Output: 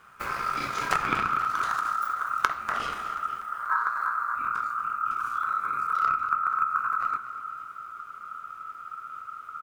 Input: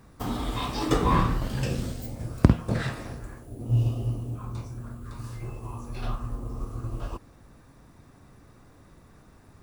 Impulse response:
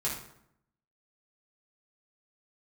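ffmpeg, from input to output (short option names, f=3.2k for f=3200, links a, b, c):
-filter_complex "[0:a]asubboost=boost=9.5:cutoff=99,acompressor=threshold=-19dB:ratio=6,aeval=exprs='0.501*(cos(1*acos(clip(val(0)/0.501,-1,1)))-cos(1*PI/2))+0.112*(cos(3*acos(clip(val(0)/0.501,-1,1)))-cos(3*PI/2))+0.126*(cos(4*acos(clip(val(0)/0.501,-1,1)))-cos(4*PI/2))+0.0631*(cos(5*acos(clip(val(0)/0.501,-1,1)))-cos(5*PI/2))+0.141*(cos(7*acos(clip(val(0)/0.501,-1,1)))-cos(7*PI/2))':c=same,aeval=exprs='val(0)*sin(2*PI*1300*n/s)':c=same,aecho=1:1:242|484|726|968|1210|1452:0.211|0.116|0.0639|0.0352|0.0193|0.0106,asplit=2[a][b];[1:a]atrim=start_sample=2205[c];[b][c]afir=irnorm=-1:irlink=0,volume=-13.5dB[d];[a][d]amix=inputs=2:normalize=0"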